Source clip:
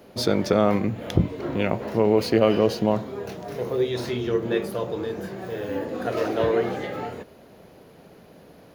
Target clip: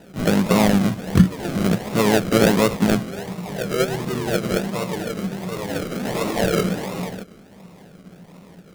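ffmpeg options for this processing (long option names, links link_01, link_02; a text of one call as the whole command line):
ffmpeg -i in.wav -filter_complex "[0:a]acrusher=samples=39:mix=1:aa=0.000001:lfo=1:lforange=23.4:lforate=1.4,asplit=2[link_01][link_02];[link_02]asetrate=55563,aresample=44100,atempo=0.793701,volume=-7dB[link_03];[link_01][link_03]amix=inputs=2:normalize=0,equalizer=frequency=180:width_type=o:width=0.39:gain=13.5" out.wav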